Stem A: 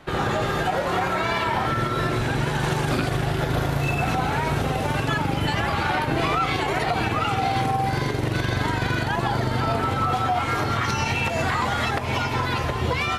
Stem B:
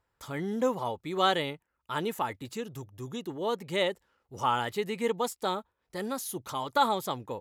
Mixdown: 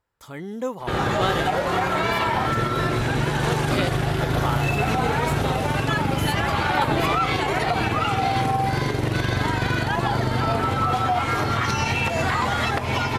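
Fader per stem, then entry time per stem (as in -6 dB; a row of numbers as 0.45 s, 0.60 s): +1.0 dB, -0.5 dB; 0.80 s, 0.00 s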